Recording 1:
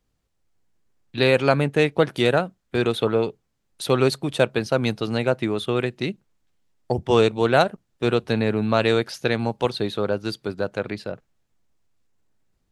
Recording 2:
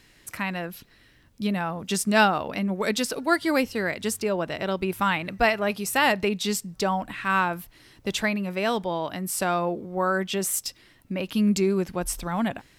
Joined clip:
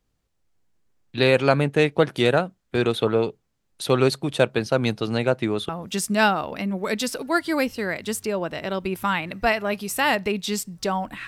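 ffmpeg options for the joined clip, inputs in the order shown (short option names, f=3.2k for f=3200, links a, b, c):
-filter_complex "[0:a]apad=whole_dur=11.27,atrim=end=11.27,atrim=end=5.692[a];[1:a]atrim=start=1.658:end=7.24[b];[a][b]acrossfade=d=0.004:c1=hsin:c2=hsin"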